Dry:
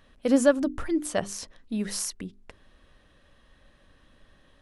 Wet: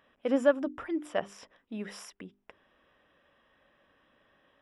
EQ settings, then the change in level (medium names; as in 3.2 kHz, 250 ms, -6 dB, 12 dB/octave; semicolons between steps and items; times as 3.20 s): Savitzky-Golay filter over 25 samples; high-pass 650 Hz 6 dB/octave; peaking EQ 2 kHz -4 dB 1.7 oct; +1.0 dB